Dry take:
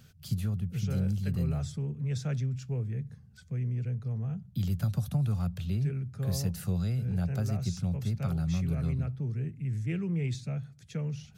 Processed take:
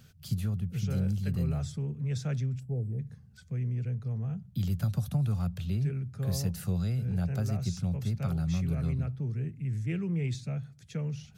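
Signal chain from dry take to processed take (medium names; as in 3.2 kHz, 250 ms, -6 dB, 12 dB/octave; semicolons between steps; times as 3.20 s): time-frequency box 2.60–2.99 s, 860–7500 Hz -24 dB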